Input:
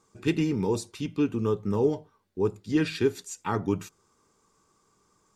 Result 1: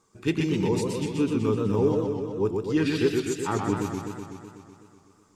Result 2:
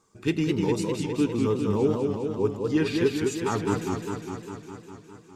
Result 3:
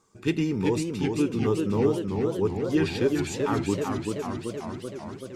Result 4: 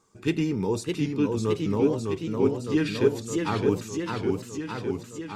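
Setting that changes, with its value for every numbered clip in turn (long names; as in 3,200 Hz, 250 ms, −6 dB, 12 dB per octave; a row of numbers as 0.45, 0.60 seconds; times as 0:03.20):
feedback echo with a swinging delay time, delay time: 125, 203, 385, 610 milliseconds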